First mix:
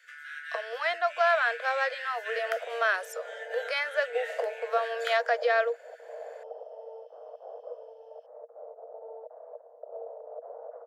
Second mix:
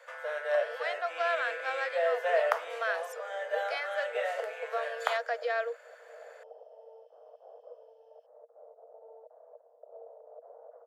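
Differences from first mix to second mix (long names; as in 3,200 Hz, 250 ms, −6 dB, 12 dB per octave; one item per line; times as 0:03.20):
speech −6.5 dB
first sound: remove Butterworth high-pass 1,400 Hz 72 dB per octave
second sound −8.5 dB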